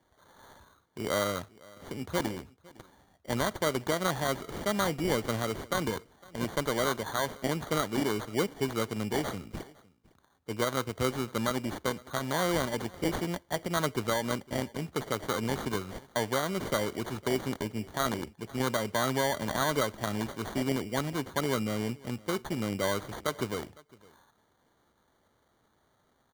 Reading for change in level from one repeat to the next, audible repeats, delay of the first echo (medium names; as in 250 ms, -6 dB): no regular repeats, 1, 507 ms